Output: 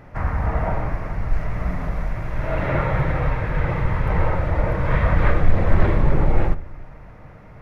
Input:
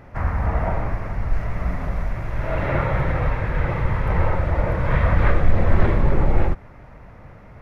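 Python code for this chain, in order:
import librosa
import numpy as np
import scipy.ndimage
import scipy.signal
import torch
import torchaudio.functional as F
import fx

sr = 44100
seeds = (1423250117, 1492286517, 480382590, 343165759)

y = fx.room_shoebox(x, sr, seeds[0], volume_m3=2500.0, walls='furnished', distance_m=0.51)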